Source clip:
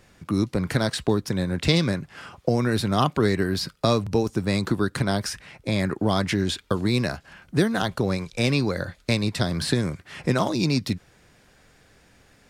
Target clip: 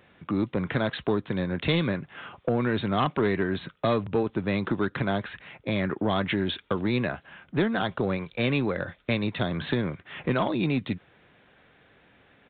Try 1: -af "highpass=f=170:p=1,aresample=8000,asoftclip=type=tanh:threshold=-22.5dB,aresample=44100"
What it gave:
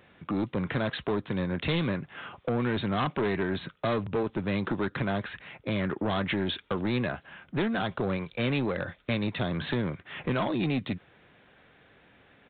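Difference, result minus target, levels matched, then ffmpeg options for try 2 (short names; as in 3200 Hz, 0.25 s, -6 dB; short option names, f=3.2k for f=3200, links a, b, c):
soft clip: distortion +8 dB
-af "highpass=f=170:p=1,aresample=8000,asoftclip=type=tanh:threshold=-15dB,aresample=44100"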